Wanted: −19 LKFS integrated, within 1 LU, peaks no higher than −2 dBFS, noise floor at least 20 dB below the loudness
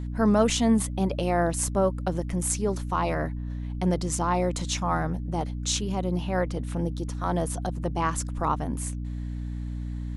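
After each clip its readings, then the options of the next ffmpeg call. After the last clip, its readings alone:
mains hum 60 Hz; hum harmonics up to 300 Hz; level of the hum −29 dBFS; integrated loudness −27.5 LKFS; sample peak −8.5 dBFS; target loudness −19.0 LKFS
→ -af "bandreject=frequency=60:width_type=h:width=4,bandreject=frequency=120:width_type=h:width=4,bandreject=frequency=180:width_type=h:width=4,bandreject=frequency=240:width_type=h:width=4,bandreject=frequency=300:width_type=h:width=4"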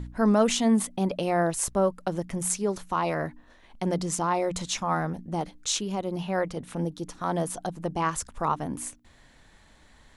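mains hum none found; integrated loudness −28.0 LKFS; sample peak −8.5 dBFS; target loudness −19.0 LKFS
→ -af "volume=9dB,alimiter=limit=-2dB:level=0:latency=1"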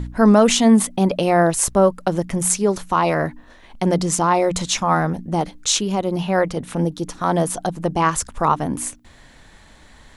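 integrated loudness −19.0 LKFS; sample peak −2.0 dBFS; background noise floor −48 dBFS

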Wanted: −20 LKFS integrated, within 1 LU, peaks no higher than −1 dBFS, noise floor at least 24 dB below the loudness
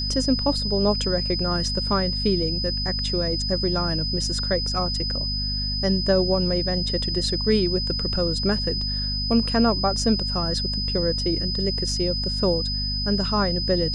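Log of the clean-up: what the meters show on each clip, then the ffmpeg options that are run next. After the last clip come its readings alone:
mains hum 50 Hz; hum harmonics up to 250 Hz; level of the hum −26 dBFS; interfering tone 5,000 Hz; level of the tone −26 dBFS; integrated loudness −22.5 LKFS; sample peak −8.0 dBFS; target loudness −20.0 LKFS
→ -af "bandreject=frequency=50:width_type=h:width=4,bandreject=frequency=100:width_type=h:width=4,bandreject=frequency=150:width_type=h:width=4,bandreject=frequency=200:width_type=h:width=4,bandreject=frequency=250:width_type=h:width=4"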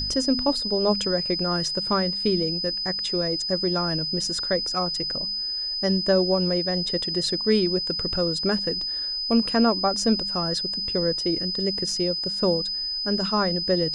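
mains hum none found; interfering tone 5,000 Hz; level of the tone −26 dBFS
→ -af "bandreject=frequency=5000:width=30"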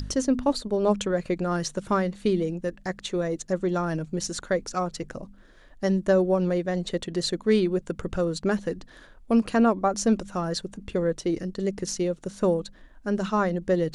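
interfering tone none found; integrated loudness −26.5 LKFS; sample peak −9.5 dBFS; target loudness −20.0 LKFS
→ -af "volume=6.5dB"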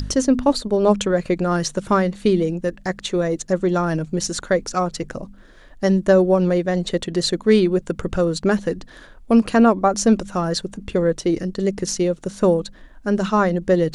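integrated loudness −20.0 LKFS; sample peak −3.0 dBFS; background noise floor −45 dBFS

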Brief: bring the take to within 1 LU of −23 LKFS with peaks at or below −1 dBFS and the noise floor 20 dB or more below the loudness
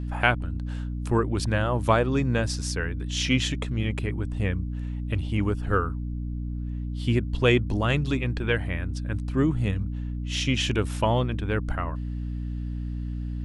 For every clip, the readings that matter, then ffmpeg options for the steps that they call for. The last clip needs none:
mains hum 60 Hz; hum harmonics up to 300 Hz; level of the hum −28 dBFS; integrated loudness −27.0 LKFS; sample peak −3.5 dBFS; target loudness −23.0 LKFS
→ -af "bandreject=frequency=60:width_type=h:width=6,bandreject=frequency=120:width_type=h:width=6,bandreject=frequency=180:width_type=h:width=6,bandreject=frequency=240:width_type=h:width=6,bandreject=frequency=300:width_type=h:width=6"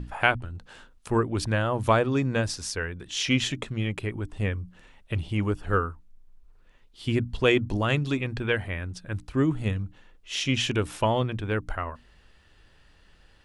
mains hum none found; integrated loudness −27.5 LKFS; sample peak −4.0 dBFS; target loudness −23.0 LKFS
→ -af "volume=4.5dB,alimiter=limit=-1dB:level=0:latency=1"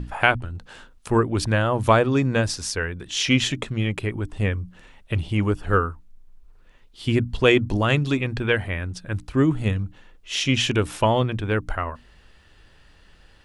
integrated loudness −23.0 LKFS; sample peak −1.0 dBFS; background noise floor −53 dBFS

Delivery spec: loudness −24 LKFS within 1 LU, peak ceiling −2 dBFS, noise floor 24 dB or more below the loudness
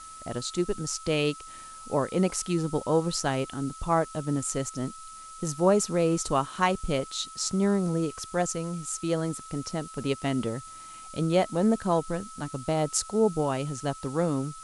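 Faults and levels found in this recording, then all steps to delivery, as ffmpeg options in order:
interfering tone 1,300 Hz; level of the tone −43 dBFS; background noise floor −45 dBFS; target noise floor −52 dBFS; integrated loudness −28.0 LKFS; sample peak −8.0 dBFS; target loudness −24.0 LKFS
→ -af "bandreject=frequency=1300:width=30"
-af "afftdn=noise_reduction=7:noise_floor=-45"
-af "volume=4dB"

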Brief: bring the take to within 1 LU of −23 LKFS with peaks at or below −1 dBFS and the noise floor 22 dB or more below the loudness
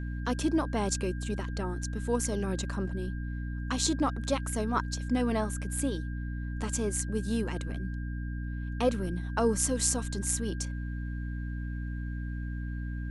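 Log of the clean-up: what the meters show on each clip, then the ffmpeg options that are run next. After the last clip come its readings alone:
mains hum 60 Hz; hum harmonics up to 300 Hz; level of the hum −32 dBFS; interfering tone 1,600 Hz; level of the tone −48 dBFS; integrated loudness −32.0 LKFS; sample peak −11.0 dBFS; target loudness −23.0 LKFS
→ -af "bandreject=frequency=60:width_type=h:width=4,bandreject=frequency=120:width_type=h:width=4,bandreject=frequency=180:width_type=h:width=4,bandreject=frequency=240:width_type=h:width=4,bandreject=frequency=300:width_type=h:width=4"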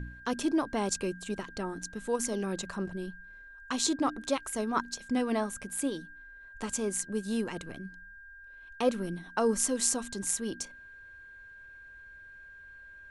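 mains hum none found; interfering tone 1,600 Hz; level of the tone −48 dBFS
→ -af "bandreject=frequency=1600:width=30"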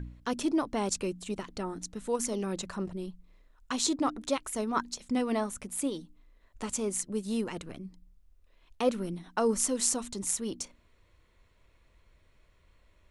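interfering tone none found; integrated loudness −32.0 LKFS; sample peak −10.5 dBFS; target loudness −23.0 LKFS
→ -af "volume=9dB"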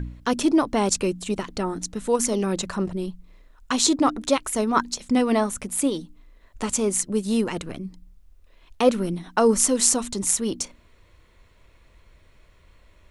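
integrated loudness −23.0 LKFS; sample peak −1.5 dBFS; background noise floor −57 dBFS

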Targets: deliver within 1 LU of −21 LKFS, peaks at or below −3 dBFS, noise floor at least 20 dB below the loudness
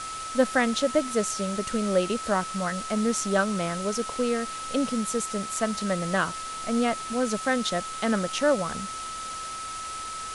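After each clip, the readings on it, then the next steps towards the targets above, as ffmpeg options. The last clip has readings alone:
interfering tone 1,300 Hz; level of the tone −34 dBFS; background noise floor −36 dBFS; target noise floor −47 dBFS; integrated loudness −27.0 LKFS; sample peak −10.0 dBFS; target loudness −21.0 LKFS
→ -af "bandreject=frequency=1300:width=30"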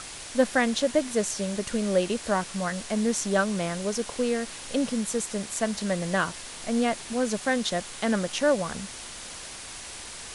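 interfering tone none found; background noise floor −41 dBFS; target noise floor −48 dBFS
→ -af "afftdn=noise_reduction=7:noise_floor=-41"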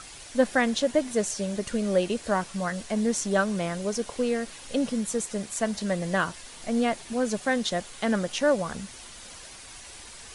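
background noise floor −45 dBFS; target noise floor −48 dBFS
→ -af "afftdn=noise_reduction=6:noise_floor=-45"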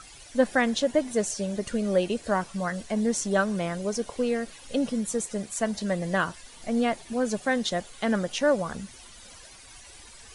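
background noise floor −48 dBFS; integrated loudness −27.5 LKFS; sample peak −10.0 dBFS; target loudness −21.0 LKFS
→ -af "volume=6.5dB"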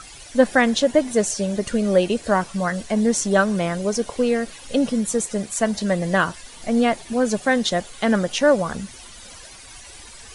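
integrated loudness −21.0 LKFS; sample peak −3.5 dBFS; background noise floor −42 dBFS

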